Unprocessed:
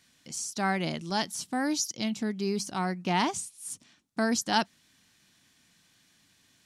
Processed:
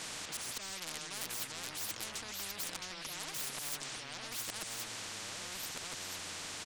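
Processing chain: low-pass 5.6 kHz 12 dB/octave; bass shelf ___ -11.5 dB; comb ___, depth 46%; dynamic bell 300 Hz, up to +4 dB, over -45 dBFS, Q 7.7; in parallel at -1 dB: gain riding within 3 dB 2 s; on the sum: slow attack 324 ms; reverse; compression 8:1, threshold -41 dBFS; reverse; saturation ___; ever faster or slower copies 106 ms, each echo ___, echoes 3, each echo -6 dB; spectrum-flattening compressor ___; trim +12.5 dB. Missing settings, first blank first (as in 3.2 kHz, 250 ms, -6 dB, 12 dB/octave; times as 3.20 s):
110 Hz, 6.4 ms, -38.5 dBFS, -4 st, 10:1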